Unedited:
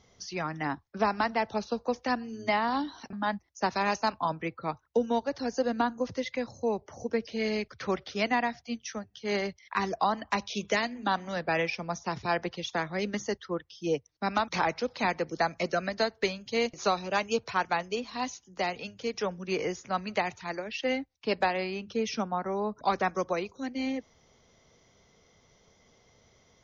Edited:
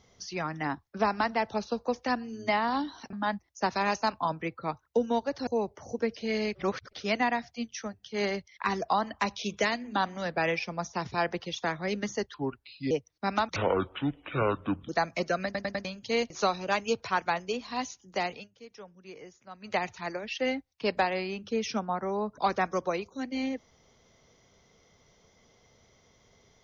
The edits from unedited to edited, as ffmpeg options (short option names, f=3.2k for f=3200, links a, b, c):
-filter_complex "[0:a]asplit=14[a][b][c][d][e][f][g][h][i][j][k][l][m][n];[a]atrim=end=5.472[o];[b]atrim=start=6.578:end=7.662[p];[c]atrim=start=7.658:end=8.042,asetpts=PTS-STARTPTS,areverse[q];[d]atrim=start=8.038:end=13.454[r];[e]atrim=start=13.45:end=13.9,asetpts=PTS-STARTPTS,asetrate=34839,aresample=44100,atrim=end_sample=25120,asetpts=PTS-STARTPTS[s];[f]atrim=start=13.896:end=14.554[t];[g]atrim=start=14.55:end=15.32,asetpts=PTS-STARTPTS,asetrate=25578,aresample=44100[u];[h]atrim=start=15.316:end=15.982[v];[i]atrim=start=15.878:end=15.982[w];[j]atrim=start=15.878:end=15.982[x];[k]atrim=start=15.878:end=15.982[y];[l]atrim=start=16.278:end=18.92,asetpts=PTS-STARTPTS,afade=t=out:st=2.462:d=0.18:silence=0.158489[z];[m]atrim=start=18.92:end=20.03,asetpts=PTS-STARTPTS,volume=-16dB[aa];[n]atrim=start=20.03,asetpts=PTS-STARTPTS,afade=t=in:d=0.18:silence=0.158489[ab];[o][p]acrossfade=d=0.004:c1=hsin:c2=hsin[ac];[ac][q]acrossfade=d=0.004:c1=hsin:c2=hsin[ad];[ad][r]acrossfade=d=0.004:c1=hsin:c2=hsin[ae];[ae][s]acrossfade=d=0.004:c1=hsin:c2=hsin[af];[af][t]acrossfade=d=0.004:c1=hsin:c2=hsin[ag];[ag][u]acrossfade=d=0.004:c1=hsin:c2=hsin[ah];[ah][v]acrossfade=d=0.004:c1=hsin:c2=hsin[ai];[ai][w]acrossfade=d=0.004:c1=hsin:c2=hsin[aj];[aj][x]acrossfade=d=0.004:c1=hsin:c2=hsin[ak];[ak][y]acrossfade=d=0.004:c1=hsin:c2=hsin[al];[z][aa][ab]concat=n=3:v=0:a=1[am];[al][am]acrossfade=d=0.004:c1=hsin:c2=hsin"